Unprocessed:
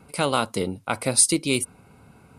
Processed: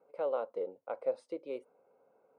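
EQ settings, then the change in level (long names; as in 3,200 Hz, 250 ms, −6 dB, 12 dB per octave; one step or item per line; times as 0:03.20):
four-pole ladder band-pass 560 Hz, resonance 70%
−3.0 dB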